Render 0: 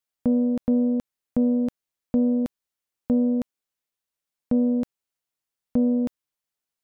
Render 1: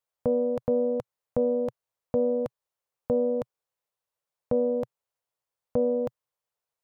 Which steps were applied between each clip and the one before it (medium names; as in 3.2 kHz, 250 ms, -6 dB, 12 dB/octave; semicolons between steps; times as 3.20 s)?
graphic EQ 125/250/500/1000 Hz +9/-11/+11/+7 dB; trim -4.5 dB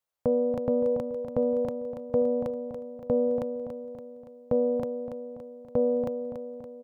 feedback delay 284 ms, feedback 54%, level -8 dB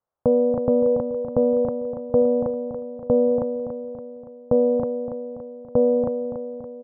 low-pass 1.3 kHz 24 dB/octave; trim +6.5 dB